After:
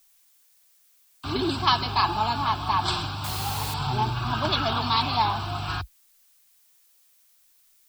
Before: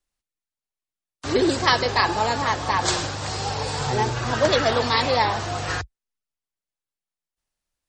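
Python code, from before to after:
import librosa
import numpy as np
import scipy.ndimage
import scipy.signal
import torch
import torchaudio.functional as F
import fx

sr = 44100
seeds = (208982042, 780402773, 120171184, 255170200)

y = fx.fixed_phaser(x, sr, hz=1900.0, stages=6)
y = fx.dmg_noise_colour(y, sr, seeds[0], colour='blue', level_db=-61.0)
y = fx.quant_dither(y, sr, seeds[1], bits=6, dither='triangular', at=(3.24, 3.74))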